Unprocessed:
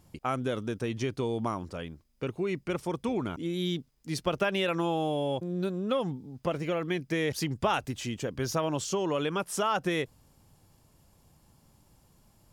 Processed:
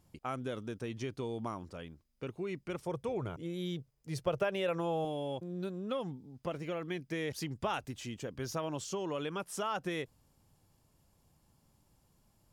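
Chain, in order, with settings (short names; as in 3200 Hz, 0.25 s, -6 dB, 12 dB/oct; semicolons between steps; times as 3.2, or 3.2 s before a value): 2.85–5.05 graphic EQ 125/250/500/4000 Hz +10/-9/+8/-3 dB; gain -7.5 dB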